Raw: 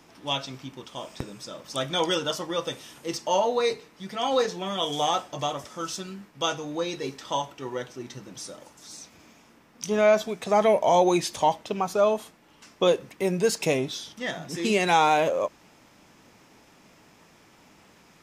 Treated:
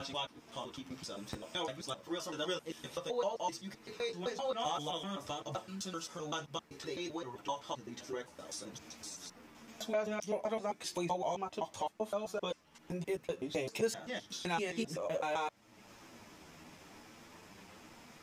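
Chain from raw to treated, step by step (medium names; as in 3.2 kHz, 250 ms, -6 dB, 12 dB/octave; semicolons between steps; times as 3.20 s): slices played last to first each 129 ms, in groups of 4; compression 2:1, threshold -45 dBFS, peak gain reduction 16 dB; chorus voices 2, 0.54 Hz, delay 11 ms, depth 2.2 ms; trim +3 dB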